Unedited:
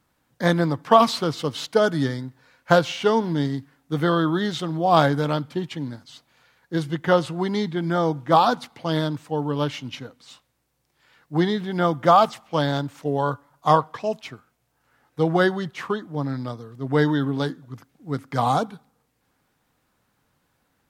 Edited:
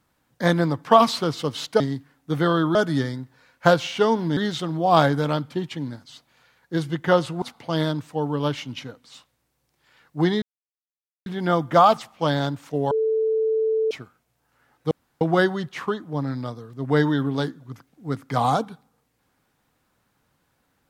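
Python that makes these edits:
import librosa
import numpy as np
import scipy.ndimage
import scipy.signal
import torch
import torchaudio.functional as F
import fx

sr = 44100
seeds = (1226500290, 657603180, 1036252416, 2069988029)

y = fx.edit(x, sr, fx.move(start_s=3.42, length_s=0.95, to_s=1.8),
    fx.cut(start_s=7.42, length_s=1.16),
    fx.insert_silence(at_s=11.58, length_s=0.84),
    fx.bleep(start_s=13.23, length_s=1.0, hz=441.0, db=-18.5),
    fx.insert_room_tone(at_s=15.23, length_s=0.3), tone=tone)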